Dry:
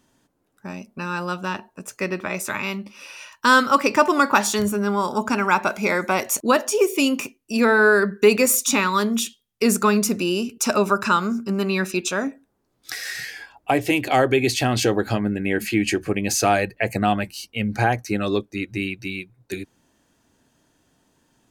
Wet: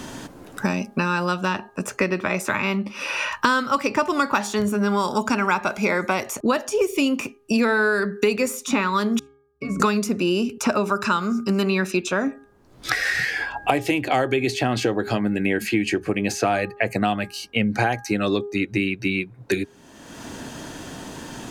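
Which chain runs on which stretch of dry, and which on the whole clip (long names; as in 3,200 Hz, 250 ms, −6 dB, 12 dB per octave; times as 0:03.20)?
0:09.19–0:09.80: bass and treble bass +9 dB, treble +12 dB + resonances in every octave C#, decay 0.4 s
whole clip: high-shelf EQ 10,000 Hz −9.5 dB; hum removal 408 Hz, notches 4; multiband upward and downward compressor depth 100%; level −1.5 dB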